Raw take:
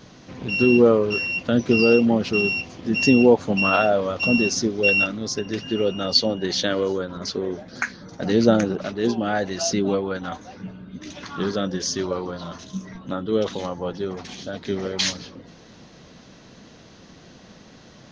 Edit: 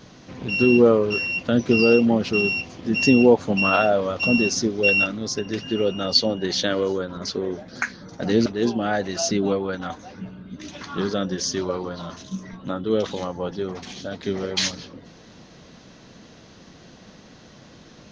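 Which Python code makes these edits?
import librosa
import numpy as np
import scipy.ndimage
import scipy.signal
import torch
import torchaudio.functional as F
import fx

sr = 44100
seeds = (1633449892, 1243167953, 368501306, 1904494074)

y = fx.edit(x, sr, fx.cut(start_s=8.46, length_s=0.42), tone=tone)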